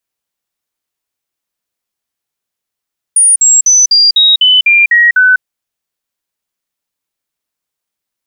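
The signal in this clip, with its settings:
stepped sweep 9,560 Hz down, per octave 3, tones 9, 0.20 s, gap 0.05 s −3.5 dBFS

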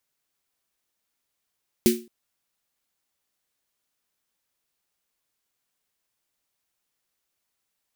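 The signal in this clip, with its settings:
synth snare length 0.22 s, tones 230 Hz, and 360 Hz, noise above 1,900 Hz, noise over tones −7.5 dB, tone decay 0.32 s, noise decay 0.28 s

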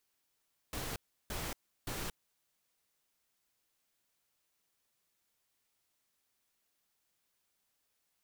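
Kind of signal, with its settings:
noise bursts pink, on 0.23 s, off 0.34 s, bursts 3, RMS −39.5 dBFS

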